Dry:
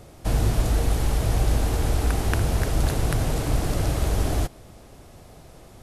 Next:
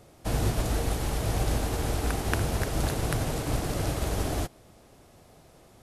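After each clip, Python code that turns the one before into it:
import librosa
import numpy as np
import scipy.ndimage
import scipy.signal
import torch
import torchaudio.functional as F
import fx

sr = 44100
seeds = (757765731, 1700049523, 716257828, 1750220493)

y = fx.low_shelf(x, sr, hz=79.0, db=-9.0)
y = fx.upward_expand(y, sr, threshold_db=-34.0, expansion=1.5)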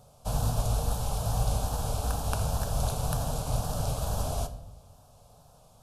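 y = fx.fixed_phaser(x, sr, hz=820.0, stages=4)
y = fx.wow_flutter(y, sr, seeds[0], rate_hz=2.1, depth_cents=62.0)
y = fx.room_shoebox(y, sr, seeds[1], volume_m3=240.0, walls='mixed', distance_m=0.37)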